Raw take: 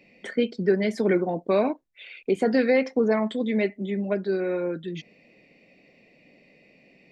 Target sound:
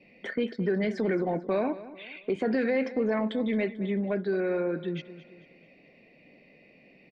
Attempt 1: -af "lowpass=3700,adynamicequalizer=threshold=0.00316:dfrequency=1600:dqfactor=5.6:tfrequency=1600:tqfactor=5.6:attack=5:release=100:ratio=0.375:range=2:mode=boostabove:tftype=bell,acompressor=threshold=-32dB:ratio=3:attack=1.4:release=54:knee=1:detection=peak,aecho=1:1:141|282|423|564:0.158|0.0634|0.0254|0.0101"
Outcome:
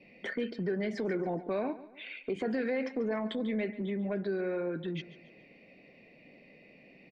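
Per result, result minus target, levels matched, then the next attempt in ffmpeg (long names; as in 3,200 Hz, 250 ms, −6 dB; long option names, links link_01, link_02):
echo 80 ms early; downward compressor: peak gain reduction +5.5 dB
-af "lowpass=3700,adynamicequalizer=threshold=0.00316:dfrequency=1600:dqfactor=5.6:tfrequency=1600:tqfactor=5.6:attack=5:release=100:ratio=0.375:range=2:mode=boostabove:tftype=bell,acompressor=threshold=-32dB:ratio=3:attack=1.4:release=54:knee=1:detection=peak,aecho=1:1:221|442|663|884:0.158|0.0634|0.0254|0.0101"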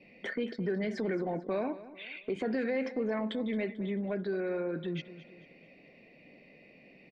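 downward compressor: peak gain reduction +5.5 dB
-af "lowpass=3700,adynamicequalizer=threshold=0.00316:dfrequency=1600:dqfactor=5.6:tfrequency=1600:tqfactor=5.6:attack=5:release=100:ratio=0.375:range=2:mode=boostabove:tftype=bell,acompressor=threshold=-24dB:ratio=3:attack=1.4:release=54:knee=1:detection=peak,aecho=1:1:221|442|663|884:0.158|0.0634|0.0254|0.0101"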